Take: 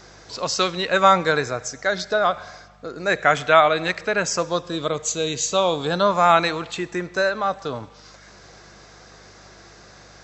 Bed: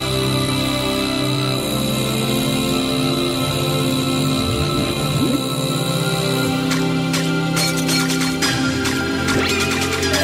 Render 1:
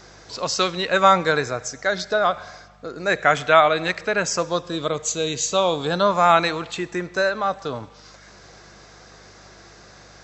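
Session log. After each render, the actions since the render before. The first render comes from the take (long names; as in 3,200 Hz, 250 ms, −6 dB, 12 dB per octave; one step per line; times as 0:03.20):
no processing that can be heard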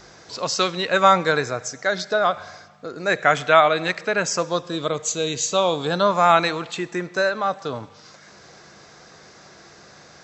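hum removal 50 Hz, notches 2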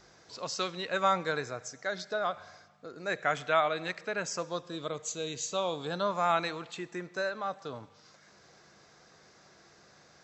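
level −12 dB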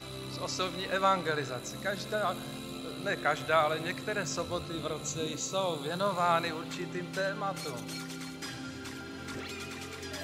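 mix in bed −22.5 dB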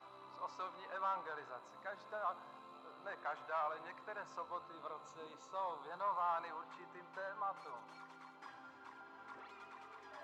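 hard clipping −26 dBFS, distortion −10 dB
resonant band-pass 990 Hz, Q 4.3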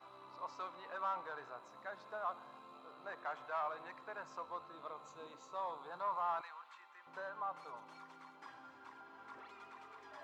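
0:06.41–0:07.07: high-pass filter 1,200 Hz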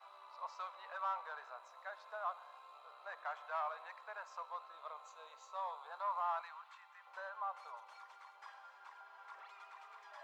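inverse Chebyshev high-pass filter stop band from 230 Hz, stop band 50 dB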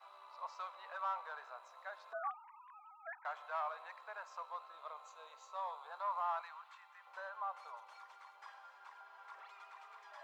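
0:02.13–0:03.25: three sine waves on the formant tracks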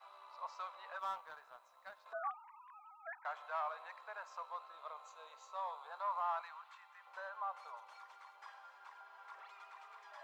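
0:00.99–0:02.06: mu-law and A-law mismatch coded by A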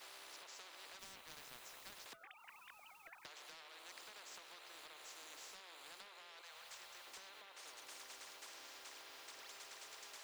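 downward compressor 6 to 1, threshold −49 dBFS, peak gain reduction 14.5 dB
every bin compressed towards the loudest bin 10 to 1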